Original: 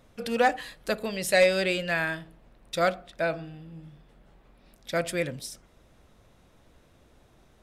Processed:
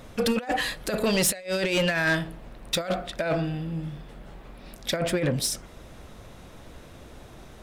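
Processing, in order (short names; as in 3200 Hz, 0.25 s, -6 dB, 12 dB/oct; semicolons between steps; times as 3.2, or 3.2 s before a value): negative-ratio compressor -30 dBFS, ratio -0.5; soft clip -26 dBFS, distortion -12 dB; 4.96–5.36 high shelf 3400 Hz -11 dB; gain +8.5 dB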